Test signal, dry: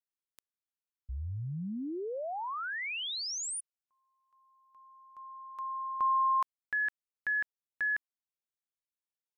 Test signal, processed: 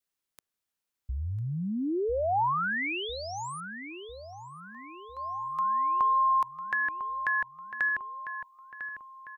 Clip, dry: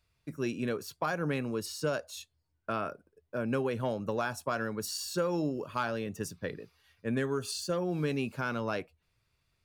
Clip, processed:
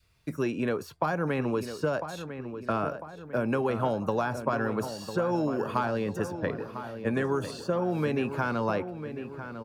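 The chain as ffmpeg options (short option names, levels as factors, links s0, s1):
-filter_complex "[0:a]acrossover=split=350|2500[s0][s1][s2];[s0]acompressor=threshold=0.0112:ratio=4[s3];[s1]acompressor=threshold=0.0126:ratio=4[s4];[s2]acompressor=threshold=0.00112:ratio=4[s5];[s3][s4][s5]amix=inputs=3:normalize=0,asplit=2[s6][s7];[s7]adelay=1000,lowpass=f=2500:p=1,volume=0.335,asplit=2[s8][s9];[s9]adelay=1000,lowpass=f=2500:p=1,volume=0.55,asplit=2[s10][s11];[s11]adelay=1000,lowpass=f=2500:p=1,volume=0.55,asplit=2[s12][s13];[s13]adelay=1000,lowpass=f=2500:p=1,volume=0.55,asplit=2[s14][s15];[s15]adelay=1000,lowpass=f=2500:p=1,volume=0.55,asplit=2[s16][s17];[s17]adelay=1000,lowpass=f=2500:p=1,volume=0.55[s18];[s8][s10][s12][s14][s16][s18]amix=inputs=6:normalize=0[s19];[s6][s19]amix=inputs=2:normalize=0,adynamicequalizer=threshold=0.002:dfrequency=870:dqfactor=1.8:tfrequency=870:tqfactor=1.8:attack=5:release=100:ratio=0.375:range=3:mode=boostabove:tftype=bell,volume=2.51"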